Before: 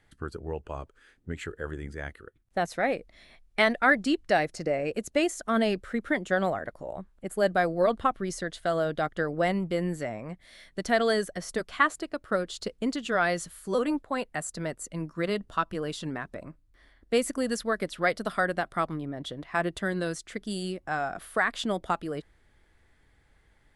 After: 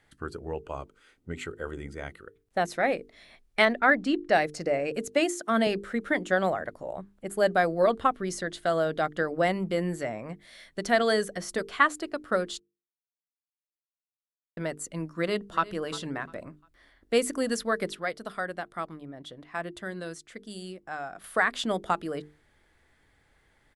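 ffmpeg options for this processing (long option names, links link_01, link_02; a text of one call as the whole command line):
ffmpeg -i in.wav -filter_complex "[0:a]asettb=1/sr,asplit=3[link_01][link_02][link_03];[link_01]atrim=end=0.584[link_04];[link_02]atrim=start=0.58:end=2.19,asetpts=PTS-STARTPTS,afade=type=in:duration=0.004:curve=qsin,afade=type=out:start_time=1.606:duration=0.004:curve=qsin,asuperstop=centerf=1700:order=4:qfactor=7.7[link_05];[link_03]atrim=start=2.186[link_06];[link_04][link_05]acrossfade=duration=0.004:curve1=hsin:curve2=qsin[link_07];[link_07][link_06]acrossfade=duration=0.004:curve1=qsin:curve2=hsin,asettb=1/sr,asplit=3[link_08][link_09][link_10];[link_08]atrim=end=3.654[link_11];[link_09]atrim=start=3.65:end=4.33,asetpts=PTS-STARTPTS,afade=type=in:duration=0.004:curve=qsin,afade=type=out:start_time=0.676:duration=0.004:curve=qsin,lowpass=frequency=2600:poles=1[link_12];[link_10]atrim=start=4.326[link_13];[link_11][link_12]acrossfade=duration=0.004:curve1=hsin:curve2=qsin[link_14];[link_14][link_13]acrossfade=duration=0.004:curve1=qsin:curve2=hsin,asettb=1/sr,asplit=3[link_15][link_16][link_17];[link_15]atrim=end=5.084[link_18];[link_16]atrim=start=5.08:end=5.67,asetpts=PTS-STARTPTS,afade=type=in:duration=0.004:curve=qsin,afade=type=out:start_time=0.586:duration=0.004:curve=qsin,highpass=frequency=140:width=0.5412,highpass=frequency=140:width=1.3066[link_19];[link_17]atrim=start=5.666[link_20];[link_18][link_19]acrossfade=duration=0.004:curve1=hsin:curve2=qsin[link_21];[link_21][link_20]acrossfade=duration=0.004:curve1=qsin:curve2=hsin,asplit=2[link_22][link_23];[link_23]afade=type=in:start_time=15.14:duration=0.01,afade=type=out:start_time=15.68:duration=0.01,aecho=0:1:350|700|1050:0.133352|0.0400056|0.0120017[link_24];[link_22][link_24]amix=inputs=2:normalize=0,asplit=5[link_25][link_26][link_27][link_28][link_29];[link_25]atrim=end=12.6,asetpts=PTS-STARTPTS,afade=type=out:start_time=12.596:duration=0.004:curve=hsin[link_30];[link_26]atrim=start=12.6:end=14.57,asetpts=PTS-STARTPTS,volume=0[link_31];[link_27]atrim=start=14.57:end=17.952,asetpts=PTS-STARTPTS,afade=type=in:duration=0.004:curve=hsin[link_32];[link_28]atrim=start=17.948:end=21.242,asetpts=PTS-STARTPTS,volume=-7.5dB[link_33];[link_29]atrim=start=21.238[link_34];[link_30][link_31][link_32]concat=n=3:v=0:a=1[link_35];[link_35][link_33]acrossfade=duration=0.004:curve1=hsin:curve2=hsin[link_36];[link_36][link_34]acrossfade=duration=0.004:curve1=hsin:curve2=hsin,lowshelf=frequency=94:gain=-7.5,bandreject=frequency=50:width_type=h:width=6,bandreject=frequency=100:width_type=h:width=6,bandreject=frequency=150:width_type=h:width=6,bandreject=frequency=200:width_type=h:width=6,bandreject=frequency=250:width_type=h:width=6,bandreject=frequency=300:width_type=h:width=6,bandreject=frequency=350:width_type=h:width=6,bandreject=frequency=400:width_type=h:width=6,bandreject=frequency=450:width_type=h:width=6,volume=1.5dB" out.wav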